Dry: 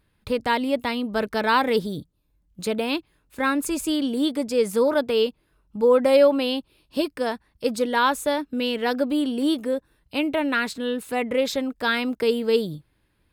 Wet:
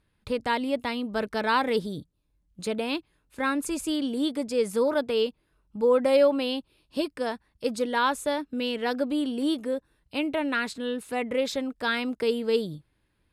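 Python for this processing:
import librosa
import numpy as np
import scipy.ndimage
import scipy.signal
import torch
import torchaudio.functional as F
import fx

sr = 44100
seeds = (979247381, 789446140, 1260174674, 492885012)

y = scipy.signal.sosfilt(scipy.signal.butter(4, 12000.0, 'lowpass', fs=sr, output='sos'), x)
y = F.gain(torch.from_numpy(y), -4.0).numpy()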